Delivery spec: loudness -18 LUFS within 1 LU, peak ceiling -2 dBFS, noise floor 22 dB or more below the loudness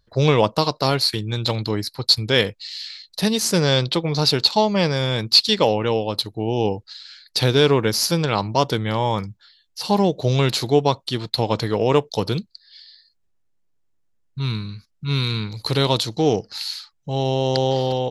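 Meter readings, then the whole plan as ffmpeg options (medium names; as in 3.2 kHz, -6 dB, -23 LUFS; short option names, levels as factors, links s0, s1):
loudness -20.5 LUFS; peak level -1.5 dBFS; loudness target -18.0 LUFS
-> -af "volume=1.33,alimiter=limit=0.794:level=0:latency=1"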